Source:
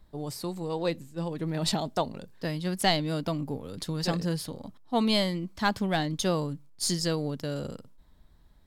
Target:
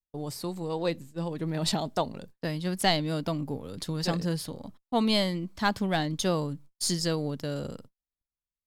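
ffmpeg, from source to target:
ffmpeg -i in.wav -af "agate=range=-42dB:threshold=-46dB:ratio=16:detection=peak" out.wav

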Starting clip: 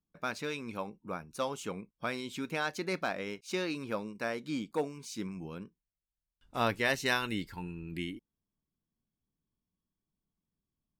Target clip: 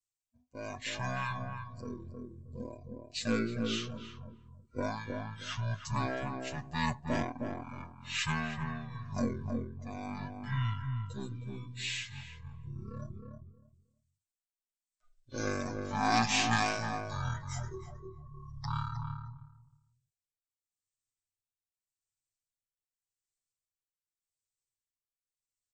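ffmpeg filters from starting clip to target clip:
ffmpeg -i in.wav -filter_complex "[0:a]aeval=exprs='if(lt(val(0),0),0.708*val(0),val(0))':channel_layout=same,aemphasis=mode=production:type=75fm,afftdn=noise_reduction=18:noise_floor=-50,adynamicequalizer=threshold=0.00251:dfrequency=1000:dqfactor=2.7:tfrequency=1000:tqfactor=2.7:attack=5:release=100:ratio=0.375:range=2:mode=cutabove:tftype=bell,aecho=1:1:3.5:0.92,asoftclip=type=tanh:threshold=-11.5dB,tremolo=f=2:d=0.76,asplit=2[link_01][link_02];[link_02]adelay=134,lowpass=frequency=1900:poles=1,volume=-3dB,asplit=2[link_03][link_04];[link_04]adelay=134,lowpass=frequency=1900:poles=1,volume=0.2,asplit=2[link_05][link_06];[link_06]adelay=134,lowpass=frequency=1900:poles=1,volume=0.2[link_07];[link_01][link_03][link_05][link_07]amix=inputs=4:normalize=0,asetrate=18846,aresample=44100" out.wav

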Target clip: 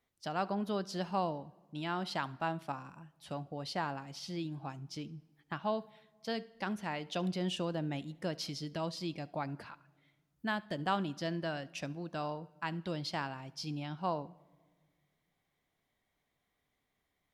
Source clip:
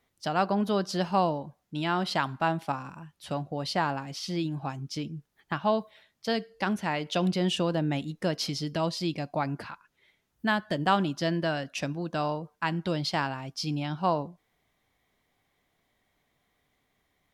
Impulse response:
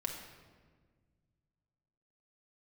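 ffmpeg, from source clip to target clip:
-filter_complex "[0:a]asplit=2[link_01][link_02];[1:a]atrim=start_sample=2205,adelay=71[link_03];[link_02][link_03]afir=irnorm=-1:irlink=0,volume=-22dB[link_04];[link_01][link_04]amix=inputs=2:normalize=0,volume=-8.5dB"

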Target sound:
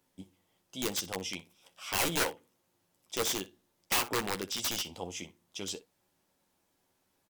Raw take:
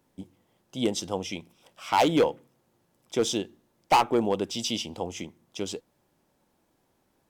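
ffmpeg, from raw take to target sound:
ffmpeg -i in.wav -af "tiltshelf=frequency=1400:gain=-4.5,aeval=exprs='(mod(9.44*val(0)+1,2)-1)/9.44':channel_layout=same,aecho=1:1:11|62:0.447|0.126,volume=-5dB" out.wav

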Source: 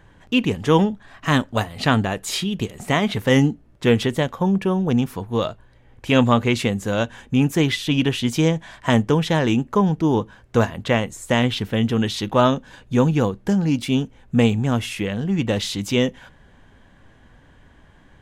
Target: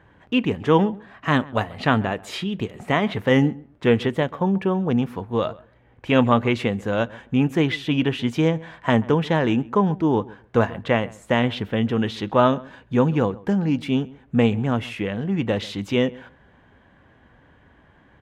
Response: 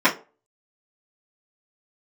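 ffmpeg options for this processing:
-filter_complex "[0:a]highpass=54,bass=frequency=250:gain=-3,treble=frequency=4000:gain=-15,asplit=2[link_01][link_02];[link_02]adelay=135,lowpass=frequency=1900:poles=1,volume=-21dB,asplit=2[link_03][link_04];[link_04]adelay=135,lowpass=frequency=1900:poles=1,volume=0.16[link_05];[link_03][link_05]amix=inputs=2:normalize=0[link_06];[link_01][link_06]amix=inputs=2:normalize=0"

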